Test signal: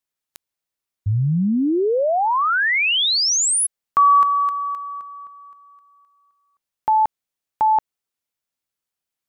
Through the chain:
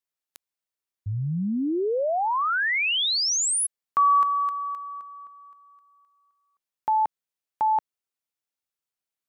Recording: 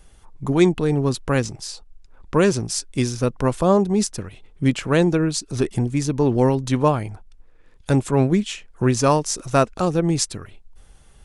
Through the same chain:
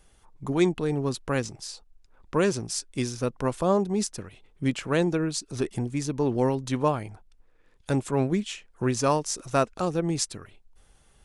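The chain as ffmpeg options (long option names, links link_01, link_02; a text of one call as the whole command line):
ffmpeg -i in.wav -af "lowshelf=frequency=150:gain=-5.5,volume=-5.5dB" out.wav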